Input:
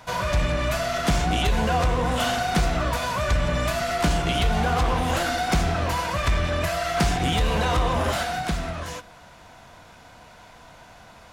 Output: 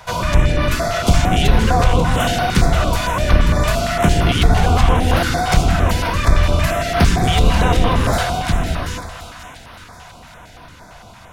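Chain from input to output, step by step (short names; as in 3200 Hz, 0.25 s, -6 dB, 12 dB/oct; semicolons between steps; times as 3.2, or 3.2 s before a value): octaver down 1 oct, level +1 dB; on a send: split-band echo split 880 Hz, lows 0.171 s, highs 0.536 s, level -10 dB; on the sum: stepped notch 8.8 Hz 270–7400 Hz; gain +6.5 dB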